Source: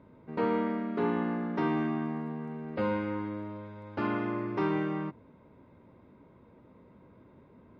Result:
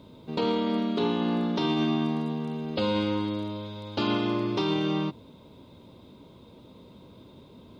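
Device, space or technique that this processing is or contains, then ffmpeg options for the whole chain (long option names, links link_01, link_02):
over-bright horn tweeter: -af "highshelf=frequency=2600:width_type=q:width=3:gain=11.5,alimiter=limit=-24dB:level=0:latency=1:release=46,volume=6.5dB"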